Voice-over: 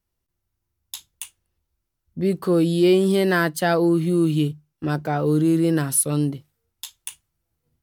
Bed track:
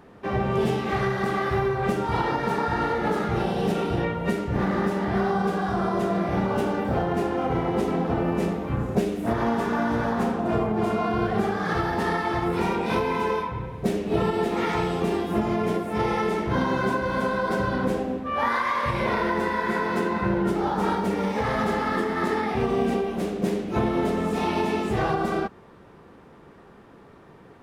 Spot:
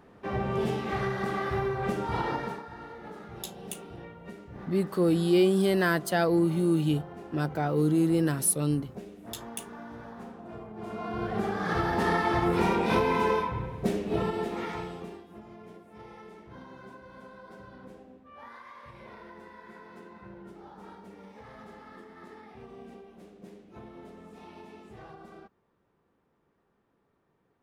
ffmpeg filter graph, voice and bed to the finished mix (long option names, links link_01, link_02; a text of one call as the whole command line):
ffmpeg -i stem1.wav -i stem2.wav -filter_complex "[0:a]adelay=2500,volume=-5.5dB[link_01];[1:a]volume=13dB,afade=type=out:start_time=2.35:duration=0.28:silence=0.211349,afade=type=in:start_time=10.73:duration=1.45:silence=0.11885,afade=type=out:start_time=13.29:duration=1.95:silence=0.0707946[link_02];[link_01][link_02]amix=inputs=2:normalize=0" out.wav